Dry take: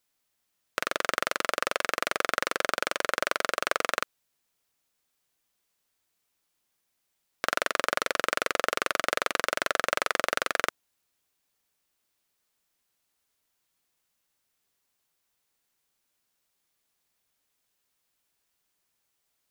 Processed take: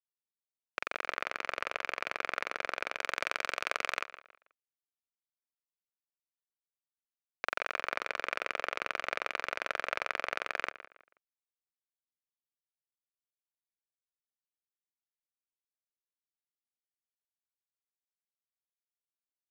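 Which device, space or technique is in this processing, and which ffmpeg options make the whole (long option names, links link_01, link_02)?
pocket radio on a weak battery: -filter_complex "[0:a]asettb=1/sr,asplit=3[link_01][link_02][link_03];[link_01]atrim=end=2.994[link_04];[link_02]atrim=start=2.99:end=4.01,asetpts=PTS-STARTPTS,afade=type=in:duration=0.004:curve=qsin,afade=type=out:start_time=1.016:duration=0.004:curve=qsin,aemphasis=mode=production:type=75fm[link_05];[link_03]atrim=start=4.006[link_06];[link_04][link_05]acrossfade=duration=0.004:curve1=hsin:curve2=qsin[link_07];[link_07][link_06]acrossfade=duration=0.004:curve1=qsin:curve2=hsin,highpass=390,lowpass=3200,aeval=exprs='sgn(val(0))*max(abs(val(0))-0.0211,0)':channel_layout=same,equalizer=frequency=2400:width_type=o:width=0.25:gain=7.5,asplit=2[link_08][link_09];[link_09]adelay=161,lowpass=frequency=3400:poles=1,volume=-14.5dB,asplit=2[link_10][link_11];[link_11]adelay=161,lowpass=frequency=3400:poles=1,volume=0.32,asplit=2[link_12][link_13];[link_13]adelay=161,lowpass=frequency=3400:poles=1,volume=0.32[link_14];[link_08][link_10][link_12][link_14]amix=inputs=4:normalize=0,volume=-6dB"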